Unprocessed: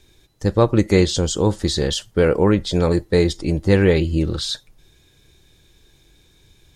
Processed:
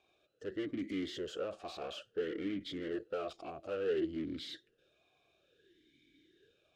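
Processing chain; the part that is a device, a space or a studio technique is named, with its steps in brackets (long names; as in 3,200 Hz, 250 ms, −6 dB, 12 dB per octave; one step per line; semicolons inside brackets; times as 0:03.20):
talk box (tube saturation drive 28 dB, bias 0.5; formant filter swept between two vowels a-i 0.58 Hz)
level +3.5 dB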